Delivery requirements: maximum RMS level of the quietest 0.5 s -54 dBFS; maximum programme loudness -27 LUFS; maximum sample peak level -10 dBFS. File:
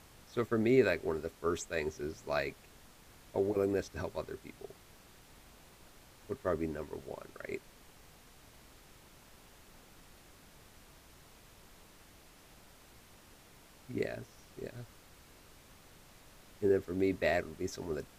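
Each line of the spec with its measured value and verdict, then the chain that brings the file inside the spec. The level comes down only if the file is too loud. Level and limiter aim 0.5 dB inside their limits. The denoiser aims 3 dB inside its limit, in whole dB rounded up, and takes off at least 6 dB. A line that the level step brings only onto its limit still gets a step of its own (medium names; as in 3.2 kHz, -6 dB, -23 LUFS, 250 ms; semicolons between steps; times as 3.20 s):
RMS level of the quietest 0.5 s -59 dBFS: pass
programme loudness -35.5 LUFS: pass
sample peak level -14.5 dBFS: pass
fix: none needed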